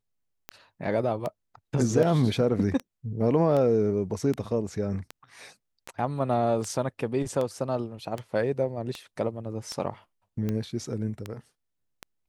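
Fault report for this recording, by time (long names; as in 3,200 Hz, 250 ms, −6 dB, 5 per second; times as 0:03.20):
scratch tick 78 rpm −18 dBFS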